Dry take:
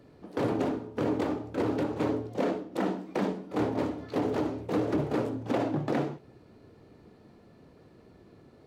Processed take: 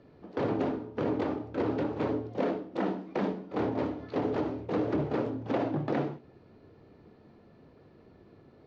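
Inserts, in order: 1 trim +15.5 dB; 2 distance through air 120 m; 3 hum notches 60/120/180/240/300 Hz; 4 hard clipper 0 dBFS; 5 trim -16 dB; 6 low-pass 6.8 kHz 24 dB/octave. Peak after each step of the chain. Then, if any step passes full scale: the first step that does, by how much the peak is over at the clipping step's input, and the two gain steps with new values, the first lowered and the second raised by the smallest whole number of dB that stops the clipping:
-3.0 dBFS, -3.5 dBFS, -2.5 dBFS, -2.5 dBFS, -18.5 dBFS, -18.5 dBFS; nothing clips

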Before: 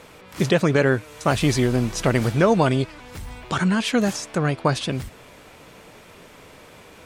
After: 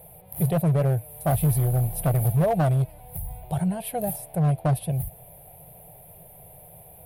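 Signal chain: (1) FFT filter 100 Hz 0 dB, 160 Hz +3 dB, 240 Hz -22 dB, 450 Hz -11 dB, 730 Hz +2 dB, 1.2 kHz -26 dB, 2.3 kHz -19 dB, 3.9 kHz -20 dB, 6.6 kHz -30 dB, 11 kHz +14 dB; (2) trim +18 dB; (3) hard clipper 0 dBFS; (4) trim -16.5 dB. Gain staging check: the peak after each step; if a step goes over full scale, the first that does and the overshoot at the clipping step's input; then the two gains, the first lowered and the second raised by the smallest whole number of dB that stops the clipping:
-9.5 dBFS, +8.5 dBFS, 0.0 dBFS, -16.5 dBFS; step 2, 8.5 dB; step 2 +9 dB, step 4 -7.5 dB

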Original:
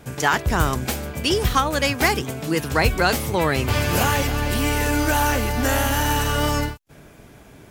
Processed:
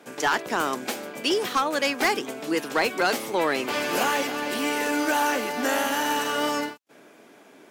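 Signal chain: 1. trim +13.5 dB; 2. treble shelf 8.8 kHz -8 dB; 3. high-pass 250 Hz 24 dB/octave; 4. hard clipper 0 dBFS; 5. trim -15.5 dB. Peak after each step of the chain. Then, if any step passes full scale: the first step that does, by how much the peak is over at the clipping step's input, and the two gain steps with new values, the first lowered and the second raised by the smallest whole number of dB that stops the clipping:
+9.5 dBFS, +9.5 dBFS, +9.0 dBFS, 0.0 dBFS, -15.5 dBFS; step 1, 9.0 dB; step 1 +4.5 dB, step 5 -6.5 dB

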